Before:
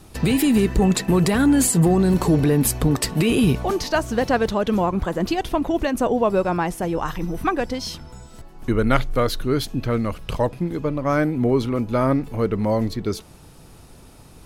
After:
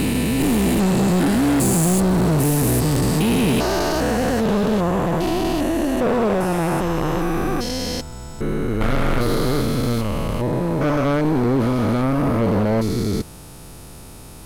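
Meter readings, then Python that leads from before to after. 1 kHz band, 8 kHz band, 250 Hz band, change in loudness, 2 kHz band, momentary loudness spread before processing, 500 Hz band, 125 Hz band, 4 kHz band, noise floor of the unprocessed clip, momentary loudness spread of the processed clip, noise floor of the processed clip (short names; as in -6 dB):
+1.0 dB, +1.0 dB, +1.5 dB, +1.0 dB, +1.0 dB, 8 LU, +0.5 dB, +2.5 dB, +2.0 dB, -46 dBFS, 8 LU, -39 dBFS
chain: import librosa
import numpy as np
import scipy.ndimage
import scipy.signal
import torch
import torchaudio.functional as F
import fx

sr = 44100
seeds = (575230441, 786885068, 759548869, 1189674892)

y = fx.spec_steps(x, sr, hold_ms=400)
y = fx.high_shelf(y, sr, hz=8300.0, db=7.0)
y = np.clip(y, -10.0 ** (-23.0 / 20.0), 10.0 ** (-23.0 / 20.0))
y = F.gain(torch.from_numpy(y), 8.0).numpy()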